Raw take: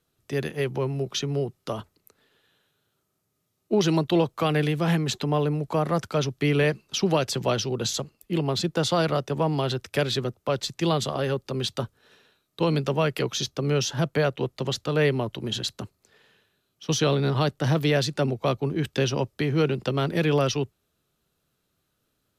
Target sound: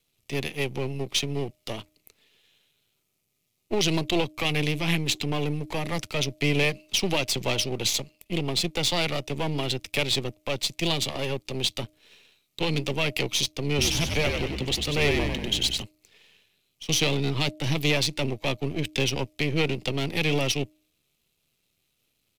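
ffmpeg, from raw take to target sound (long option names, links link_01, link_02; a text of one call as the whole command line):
ffmpeg -i in.wav -filter_complex "[0:a]aeval=exprs='if(lt(val(0),0),0.251*val(0),val(0))':channel_layout=same,highshelf=frequency=1900:width_type=q:width=3:gain=6,bandreject=frequency=307.5:width_type=h:width=4,bandreject=frequency=615:width_type=h:width=4,asplit=3[link_01][link_02][link_03];[link_01]afade=type=out:start_time=13.77:duration=0.02[link_04];[link_02]asplit=8[link_05][link_06][link_07][link_08][link_09][link_10][link_11][link_12];[link_06]adelay=95,afreqshift=-64,volume=-4dB[link_13];[link_07]adelay=190,afreqshift=-128,volume=-9.2dB[link_14];[link_08]adelay=285,afreqshift=-192,volume=-14.4dB[link_15];[link_09]adelay=380,afreqshift=-256,volume=-19.6dB[link_16];[link_10]adelay=475,afreqshift=-320,volume=-24.8dB[link_17];[link_11]adelay=570,afreqshift=-384,volume=-30dB[link_18];[link_12]adelay=665,afreqshift=-448,volume=-35.2dB[link_19];[link_05][link_13][link_14][link_15][link_16][link_17][link_18][link_19]amix=inputs=8:normalize=0,afade=type=in:start_time=13.77:duration=0.02,afade=type=out:start_time=15.81:duration=0.02[link_20];[link_03]afade=type=in:start_time=15.81:duration=0.02[link_21];[link_04][link_20][link_21]amix=inputs=3:normalize=0" out.wav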